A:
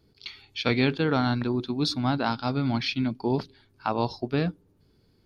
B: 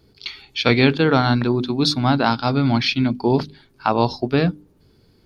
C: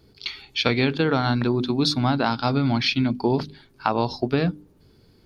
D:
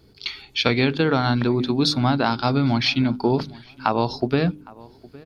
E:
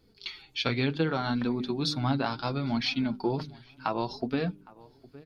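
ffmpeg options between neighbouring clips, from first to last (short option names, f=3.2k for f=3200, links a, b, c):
-af "bandreject=f=50:t=h:w=6,bandreject=f=100:t=h:w=6,bandreject=f=150:t=h:w=6,bandreject=f=200:t=h:w=6,bandreject=f=250:t=h:w=6,bandreject=f=300:t=h:w=6,volume=8.5dB"
-af "acompressor=threshold=-17dB:ratio=6"
-filter_complex "[0:a]asplit=2[a][b];[b]adelay=811,lowpass=f=2k:p=1,volume=-22dB,asplit=2[c][d];[d]adelay=811,lowpass=f=2k:p=1,volume=0.27[e];[a][c][e]amix=inputs=3:normalize=0,volume=1.5dB"
-af "flanger=delay=3.8:depth=3.8:regen=36:speed=0.69:shape=triangular,volume=-5dB"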